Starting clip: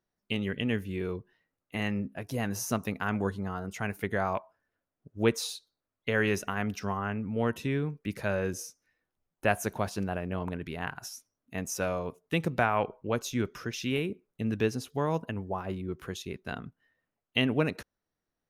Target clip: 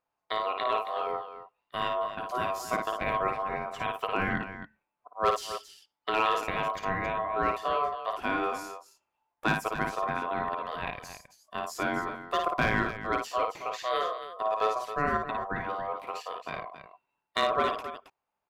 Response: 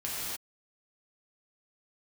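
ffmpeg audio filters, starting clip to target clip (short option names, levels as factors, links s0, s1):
-filter_complex "[0:a]bass=f=250:g=2,treble=f=4000:g=-8,volume=7.5,asoftclip=hard,volume=0.133,aeval=exprs='val(0)*sin(2*PI*870*n/s)':c=same,asplit=2[s0][s1];[s1]aecho=0:1:55.39|271.1:0.562|0.282[s2];[s0][s2]amix=inputs=2:normalize=0,volume=1.26"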